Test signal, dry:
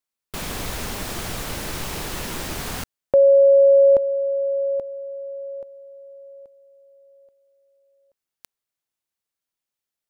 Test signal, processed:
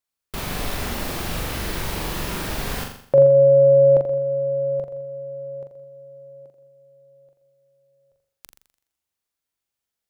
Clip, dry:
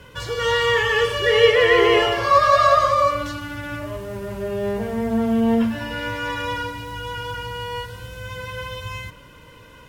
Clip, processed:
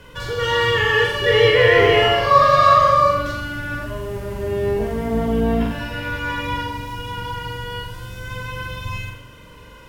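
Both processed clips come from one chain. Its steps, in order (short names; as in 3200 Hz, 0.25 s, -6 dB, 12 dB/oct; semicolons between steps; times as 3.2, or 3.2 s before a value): octaver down 2 oct, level -2 dB; dynamic EQ 7300 Hz, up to -5 dB, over -46 dBFS, Q 1.2; flutter echo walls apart 7.2 m, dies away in 0.6 s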